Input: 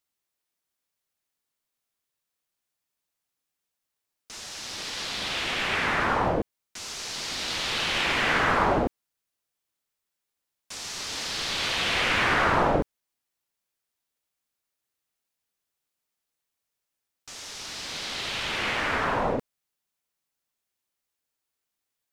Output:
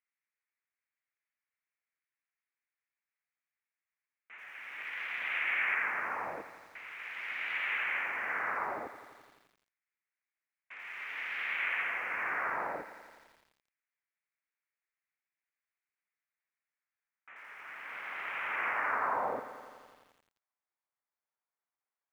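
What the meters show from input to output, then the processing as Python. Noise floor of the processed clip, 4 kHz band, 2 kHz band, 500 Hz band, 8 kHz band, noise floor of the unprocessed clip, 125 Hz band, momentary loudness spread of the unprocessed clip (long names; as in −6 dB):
below −85 dBFS, −21.0 dB, −5.0 dB, −14.0 dB, below −25 dB, −84 dBFS, below −25 dB, 15 LU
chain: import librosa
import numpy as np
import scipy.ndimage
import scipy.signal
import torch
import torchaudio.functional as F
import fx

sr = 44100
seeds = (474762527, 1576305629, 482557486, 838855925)

y = fx.wiener(x, sr, points=9)
y = fx.env_lowpass_down(y, sr, base_hz=960.0, full_db=-22.0)
y = fx.high_shelf_res(y, sr, hz=3100.0, db=-11.0, q=3.0)
y = fx.filter_sweep_bandpass(y, sr, from_hz=2000.0, to_hz=950.0, start_s=16.03, end_s=19.74, q=1.4)
y = fx.echo_crushed(y, sr, ms=85, feedback_pct=80, bits=9, wet_db=-14)
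y = y * librosa.db_to_amplitude(-2.5)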